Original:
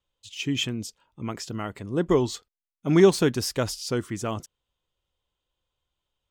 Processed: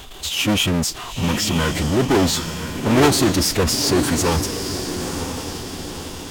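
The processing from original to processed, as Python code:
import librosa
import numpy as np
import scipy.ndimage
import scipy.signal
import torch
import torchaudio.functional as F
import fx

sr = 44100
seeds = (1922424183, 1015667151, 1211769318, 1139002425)

y = fx.power_curve(x, sr, exponent=0.35)
y = fx.echo_diffused(y, sr, ms=973, feedback_pct=50, wet_db=-7.5)
y = fx.pitch_keep_formants(y, sr, semitones=-5.0)
y = F.gain(torch.from_numpy(y), -3.5).numpy()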